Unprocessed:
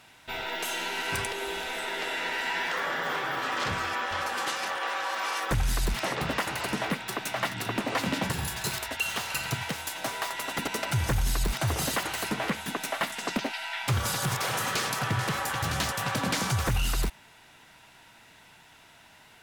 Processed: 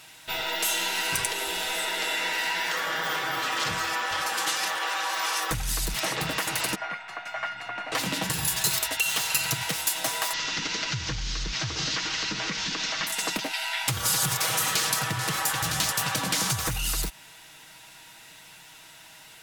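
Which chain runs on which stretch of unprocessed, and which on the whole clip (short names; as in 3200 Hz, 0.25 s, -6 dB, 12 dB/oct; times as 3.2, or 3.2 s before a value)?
6.75–7.92 LPF 4800 Hz + band shelf 1200 Hz +12.5 dB 2.4 oct + resonator 710 Hz, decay 0.32 s, mix 90%
10.33–13.07 delta modulation 32 kbps, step -28.5 dBFS + bell 690 Hz -8 dB 0.93 oct + compressor 2:1, threshold -32 dBFS
whole clip: compressor, threshold -28 dBFS; high shelf 2900 Hz +11.5 dB; comb 6.3 ms, depth 45%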